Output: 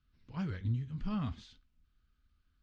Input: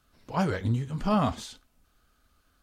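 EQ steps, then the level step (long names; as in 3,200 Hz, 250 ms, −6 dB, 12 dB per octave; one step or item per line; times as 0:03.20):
high-frequency loss of the air 210 metres
guitar amp tone stack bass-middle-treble 6-0-2
+8.5 dB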